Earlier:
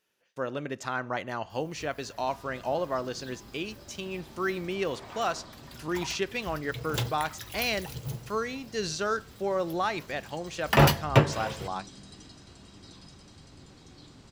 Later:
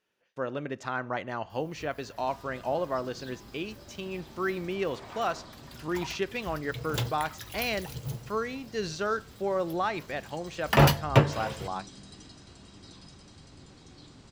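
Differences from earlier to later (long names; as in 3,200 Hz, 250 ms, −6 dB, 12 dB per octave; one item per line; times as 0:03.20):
speech: add low-pass filter 3,200 Hz 6 dB per octave
second sound: send off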